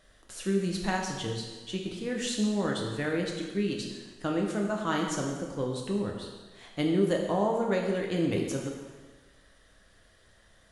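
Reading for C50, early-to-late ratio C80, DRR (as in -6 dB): 3.5 dB, 5.0 dB, -0.5 dB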